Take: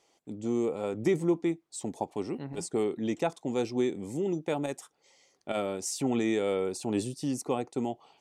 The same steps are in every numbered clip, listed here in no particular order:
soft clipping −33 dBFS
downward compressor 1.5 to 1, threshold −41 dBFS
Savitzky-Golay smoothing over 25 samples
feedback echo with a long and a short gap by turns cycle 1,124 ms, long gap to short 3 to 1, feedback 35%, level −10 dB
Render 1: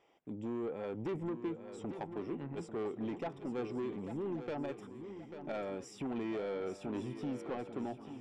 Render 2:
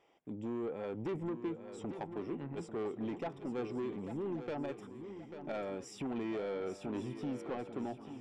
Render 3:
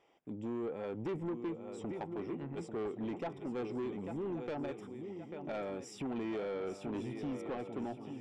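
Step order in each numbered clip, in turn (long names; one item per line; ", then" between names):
downward compressor, then Savitzky-Golay smoothing, then soft clipping, then feedback echo with a long and a short gap by turns
Savitzky-Golay smoothing, then downward compressor, then soft clipping, then feedback echo with a long and a short gap by turns
Savitzky-Golay smoothing, then downward compressor, then feedback echo with a long and a short gap by turns, then soft clipping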